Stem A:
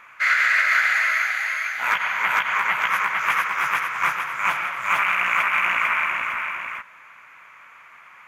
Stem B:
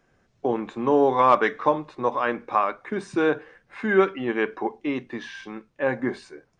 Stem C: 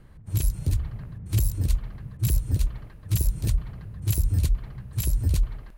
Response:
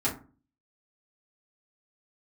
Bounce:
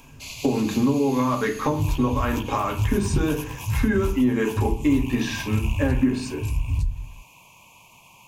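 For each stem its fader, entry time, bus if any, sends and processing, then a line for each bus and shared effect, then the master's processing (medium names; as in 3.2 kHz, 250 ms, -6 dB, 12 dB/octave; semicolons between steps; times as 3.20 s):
+2.0 dB, 0.00 s, no send, elliptic band-stop 980–2600 Hz, stop band 40 dB; auto duck -11 dB, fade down 0.25 s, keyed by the second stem
0.0 dB, 0.00 s, send -4.5 dB, band-stop 760 Hz, Q 12; compression, threshold -27 dBFS, peak gain reduction 14 dB
-18.5 dB, 1.45 s, send -9.5 dB, low-pass 6.9 kHz 12 dB/octave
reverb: on, RT60 0.35 s, pre-delay 4 ms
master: tone controls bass +15 dB, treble +13 dB; compression 2.5:1, threshold -19 dBFS, peak gain reduction 8 dB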